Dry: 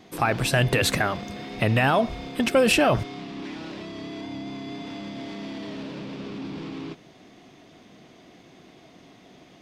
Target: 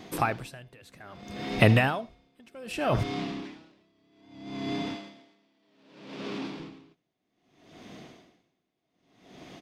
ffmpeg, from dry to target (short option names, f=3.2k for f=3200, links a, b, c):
-filter_complex "[0:a]asettb=1/sr,asplit=3[a][b][c];[a]atrim=end=4.954[d];[b]atrim=start=4.95:end=6.6,asetpts=PTS-STARTPTS,afade=t=in:d=0.004:c=qsin,afade=t=out:st=1.646:d=0.004:c=qsin,highpass=f=380:p=1[e];[c]atrim=start=6.596[f];[d][e]acrossfade=d=0.004:c1=hsin:c2=qsin[g];[g][f]acrossfade=d=0.004:c1=qsin:c2=hsin,aecho=1:1:79:0.0841,aeval=exprs='val(0)*pow(10,-36*(0.5-0.5*cos(2*PI*0.63*n/s))/20)':c=same,volume=4.5dB"